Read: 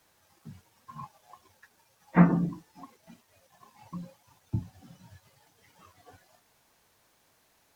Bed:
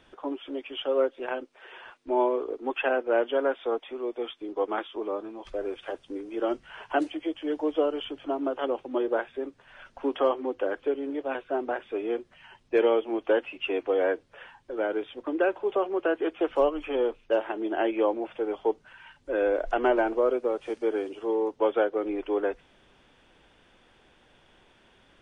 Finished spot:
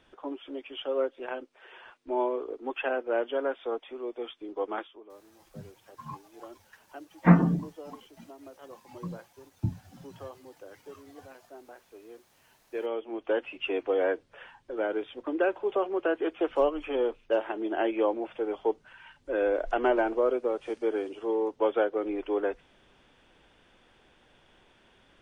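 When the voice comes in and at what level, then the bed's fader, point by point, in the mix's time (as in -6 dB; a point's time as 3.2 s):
5.10 s, +1.5 dB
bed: 4.8 s -4 dB
5.04 s -19.5 dB
12.19 s -19.5 dB
13.53 s -1.5 dB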